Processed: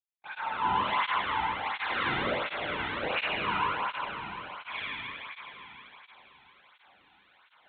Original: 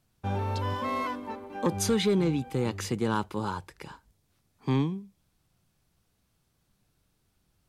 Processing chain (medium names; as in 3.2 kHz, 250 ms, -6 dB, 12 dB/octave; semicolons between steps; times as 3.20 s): tracing distortion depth 0.5 ms; steep high-pass 260 Hz; reverse; upward compressor, threshold -39 dBFS; reverse; LFO high-pass saw down 1.3 Hz 650–2700 Hz; on a send: echo whose repeats swap between lows and highs 107 ms, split 1.1 kHz, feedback 90%, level -12 dB; on the sum: expander -47 dBFS; LPC vocoder at 8 kHz whisper; Schroeder reverb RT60 2.8 s, combs from 30 ms, DRR -7 dB; cancelling through-zero flanger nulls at 1.4 Hz, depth 1.9 ms